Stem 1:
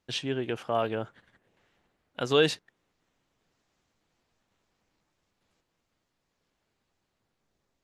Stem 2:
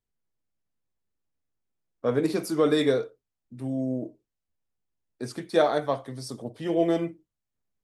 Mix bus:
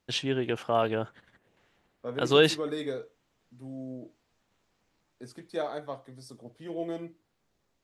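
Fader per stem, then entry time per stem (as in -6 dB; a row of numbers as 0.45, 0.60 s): +2.0, -11.0 dB; 0.00, 0.00 s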